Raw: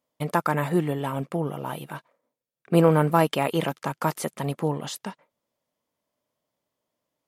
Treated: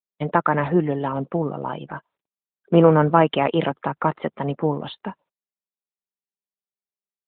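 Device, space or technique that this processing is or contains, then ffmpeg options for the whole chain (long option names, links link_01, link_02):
mobile call with aggressive noise cancelling: -af "highpass=150,afftdn=noise_reduction=31:noise_floor=-43,volume=5dB" -ar 8000 -c:a libopencore_amrnb -b:a 12200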